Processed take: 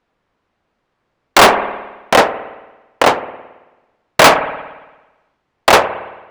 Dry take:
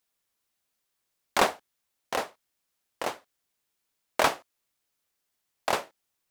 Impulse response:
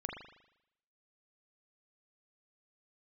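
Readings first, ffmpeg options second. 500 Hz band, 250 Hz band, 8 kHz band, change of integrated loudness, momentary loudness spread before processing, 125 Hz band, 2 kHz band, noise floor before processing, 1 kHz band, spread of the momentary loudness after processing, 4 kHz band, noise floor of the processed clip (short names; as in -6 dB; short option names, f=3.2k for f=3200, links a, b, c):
+18.5 dB, +18.0 dB, +16.0 dB, +17.0 dB, 16 LU, +19.5 dB, +18.5 dB, -81 dBFS, +18.0 dB, 20 LU, +18.0 dB, -71 dBFS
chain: -filter_complex "[0:a]adynamicsmooth=sensitivity=7:basefreq=1.5k,asplit=2[a][b];[1:a]atrim=start_sample=2205,asetrate=31752,aresample=44100[c];[b][c]afir=irnorm=-1:irlink=0,volume=-13dB[d];[a][d]amix=inputs=2:normalize=0,apsyclip=23dB,volume=-1.5dB"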